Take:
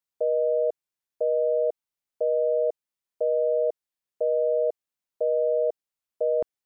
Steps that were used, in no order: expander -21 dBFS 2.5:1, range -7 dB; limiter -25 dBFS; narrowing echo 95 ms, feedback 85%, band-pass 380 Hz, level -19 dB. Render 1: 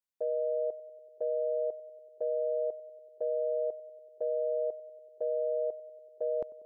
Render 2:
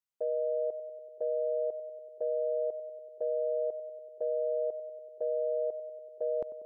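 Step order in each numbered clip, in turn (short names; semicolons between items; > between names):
narrowing echo > expander > limiter; expander > narrowing echo > limiter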